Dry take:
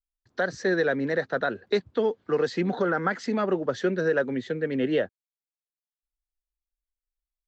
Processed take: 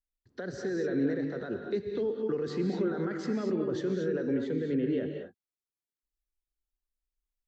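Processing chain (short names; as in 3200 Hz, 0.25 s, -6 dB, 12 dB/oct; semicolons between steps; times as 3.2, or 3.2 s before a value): limiter -24 dBFS, peak gain reduction 10 dB; resonant low shelf 530 Hz +7.5 dB, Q 1.5; non-linear reverb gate 0.26 s rising, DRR 3 dB; gain -7.5 dB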